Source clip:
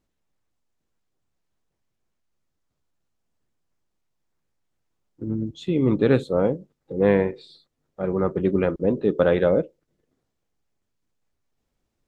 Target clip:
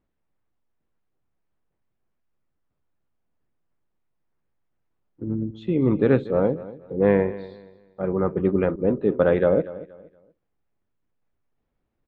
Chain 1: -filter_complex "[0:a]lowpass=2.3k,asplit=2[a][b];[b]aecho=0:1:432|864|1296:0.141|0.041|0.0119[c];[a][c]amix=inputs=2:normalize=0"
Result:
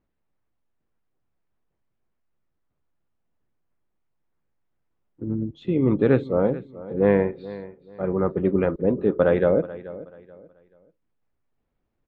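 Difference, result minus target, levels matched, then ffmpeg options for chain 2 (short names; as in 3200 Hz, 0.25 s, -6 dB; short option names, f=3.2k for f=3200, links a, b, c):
echo 0.196 s late
-filter_complex "[0:a]lowpass=2.3k,asplit=2[a][b];[b]aecho=0:1:236|472|708:0.141|0.041|0.0119[c];[a][c]amix=inputs=2:normalize=0"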